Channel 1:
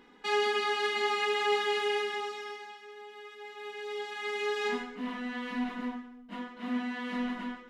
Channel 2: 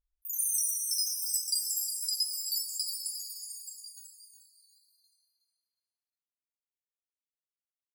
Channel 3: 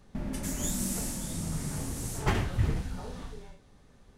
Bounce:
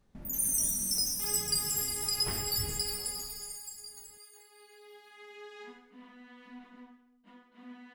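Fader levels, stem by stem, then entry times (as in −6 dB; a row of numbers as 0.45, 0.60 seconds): −16.5, 0.0, −12.0 decibels; 0.95, 0.00, 0.00 seconds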